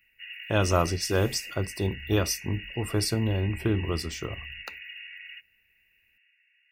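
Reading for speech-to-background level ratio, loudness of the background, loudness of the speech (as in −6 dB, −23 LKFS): 12.5 dB, −40.5 LKFS, −28.0 LKFS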